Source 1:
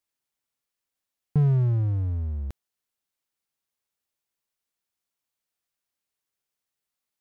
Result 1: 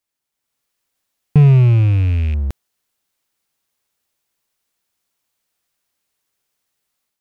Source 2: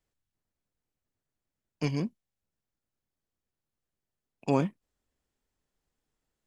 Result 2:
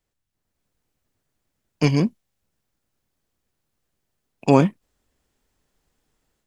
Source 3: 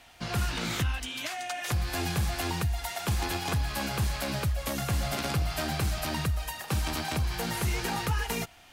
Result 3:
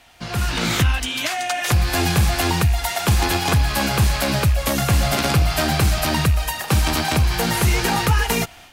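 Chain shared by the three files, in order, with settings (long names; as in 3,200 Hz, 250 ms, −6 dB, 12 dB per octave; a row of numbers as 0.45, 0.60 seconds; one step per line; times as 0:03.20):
loose part that buzzes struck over −26 dBFS, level −36 dBFS
automatic gain control gain up to 8 dB
level +3.5 dB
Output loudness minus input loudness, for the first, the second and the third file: +11.5, +11.0, +11.5 LU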